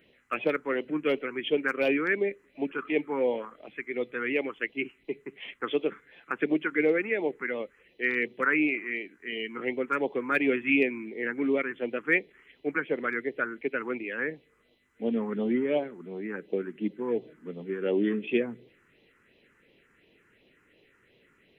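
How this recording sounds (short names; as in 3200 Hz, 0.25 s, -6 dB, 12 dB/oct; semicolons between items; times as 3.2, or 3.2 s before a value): phasing stages 4, 2.8 Hz, lowest notch 600–1400 Hz; AAC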